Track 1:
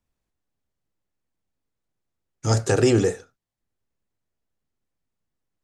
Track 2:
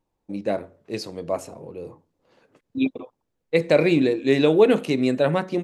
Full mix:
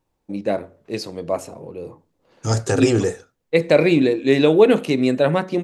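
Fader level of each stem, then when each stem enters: +0.5, +3.0 decibels; 0.00, 0.00 seconds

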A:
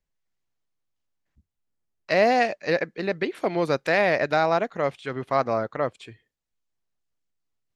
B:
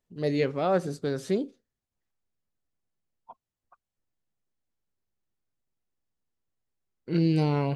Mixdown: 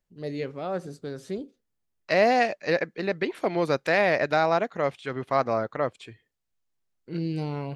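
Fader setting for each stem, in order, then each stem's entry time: −1.0, −6.0 decibels; 0.00, 0.00 seconds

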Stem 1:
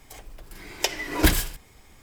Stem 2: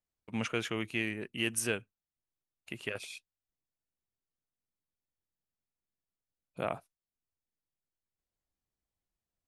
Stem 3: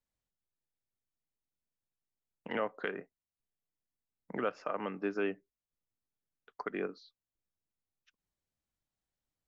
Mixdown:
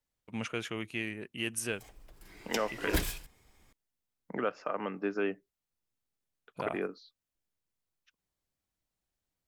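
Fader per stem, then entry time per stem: −11.5, −2.5, +1.5 decibels; 1.70, 0.00, 0.00 seconds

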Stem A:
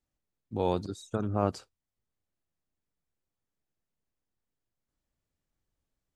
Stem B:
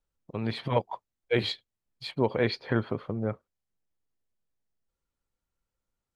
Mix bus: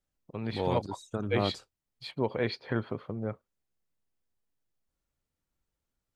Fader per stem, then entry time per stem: −2.5, −4.0 decibels; 0.00, 0.00 seconds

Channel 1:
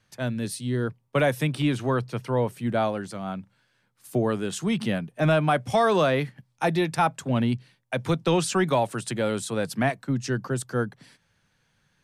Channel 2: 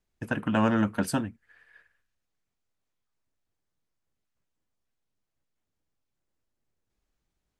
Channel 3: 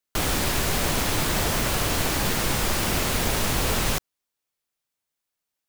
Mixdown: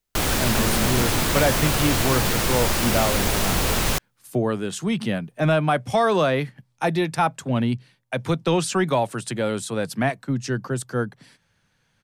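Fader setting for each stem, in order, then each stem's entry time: +1.5, −4.0, +2.0 decibels; 0.20, 0.00, 0.00 seconds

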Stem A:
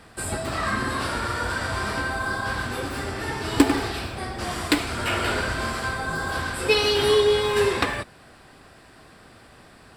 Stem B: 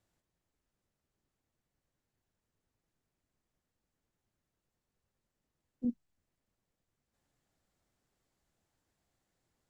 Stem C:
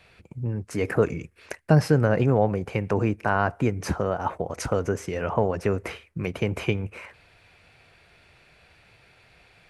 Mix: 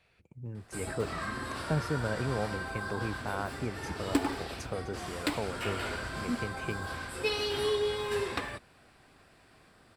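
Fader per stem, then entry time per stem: −11.0, +0.5, −12.5 decibels; 0.55, 0.45, 0.00 seconds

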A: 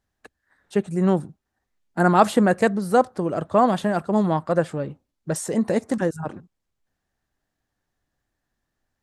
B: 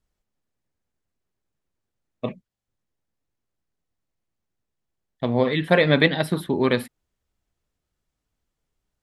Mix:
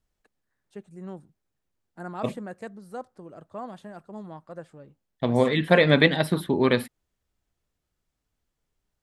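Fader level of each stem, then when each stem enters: −19.5, −0.5 decibels; 0.00, 0.00 seconds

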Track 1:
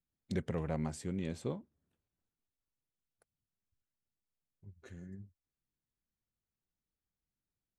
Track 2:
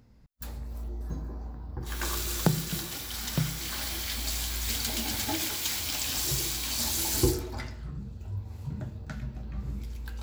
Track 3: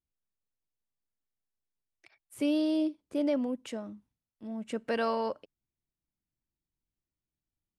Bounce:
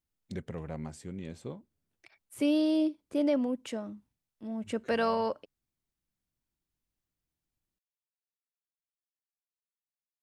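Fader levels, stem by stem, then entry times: −3.0 dB, muted, +1.5 dB; 0.00 s, muted, 0.00 s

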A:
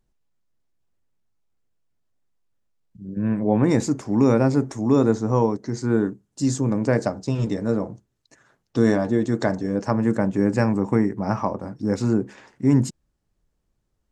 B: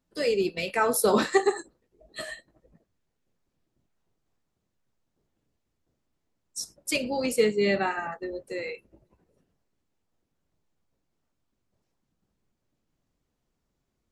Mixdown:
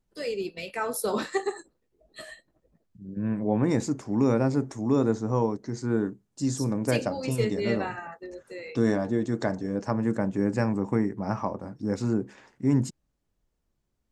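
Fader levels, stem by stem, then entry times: −5.5, −6.0 decibels; 0.00, 0.00 seconds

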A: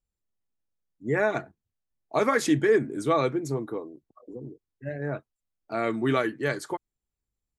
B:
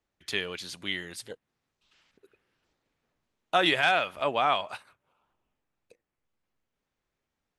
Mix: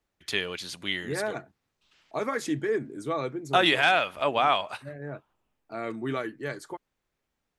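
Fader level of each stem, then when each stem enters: −6.5, +2.0 decibels; 0.00, 0.00 seconds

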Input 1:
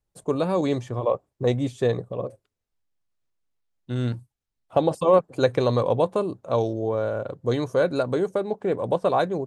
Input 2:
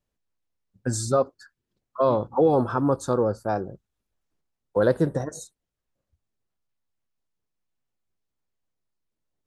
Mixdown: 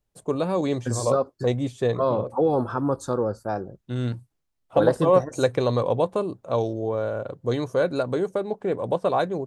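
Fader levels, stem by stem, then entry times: −1.0, −2.0 decibels; 0.00, 0.00 seconds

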